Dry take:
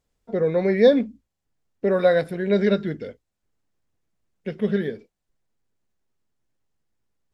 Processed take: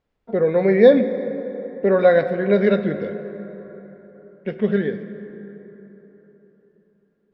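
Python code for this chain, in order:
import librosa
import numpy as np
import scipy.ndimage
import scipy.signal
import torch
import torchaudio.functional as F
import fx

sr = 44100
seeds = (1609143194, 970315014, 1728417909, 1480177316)

y = scipy.signal.sosfilt(scipy.signal.butter(2, 2800.0, 'lowpass', fs=sr, output='sos'), x)
y = fx.low_shelf(y, sr, hz=120.0, db=-7.0)
y = fx.rev_plate(y, sr, seeds[0], rt60_s=4.1, hf_ratio=0.45, predelay_ms=0, drr_db=9.5)
y = y * 10.0 ** (4.0 / 20.0)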